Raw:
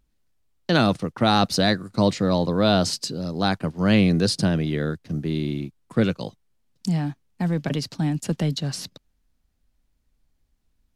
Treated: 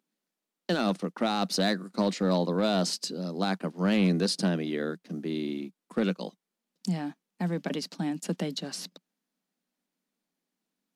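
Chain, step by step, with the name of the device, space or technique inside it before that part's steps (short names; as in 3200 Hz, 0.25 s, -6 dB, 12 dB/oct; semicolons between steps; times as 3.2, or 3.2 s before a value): elliptic high-pass 180 Hz; limiter into clipper (limiter -12 dBFS, peak gain reduction 7.5 dB; hard clip -14.5 dBFS, distortion -24 dB); gain -3.5 dB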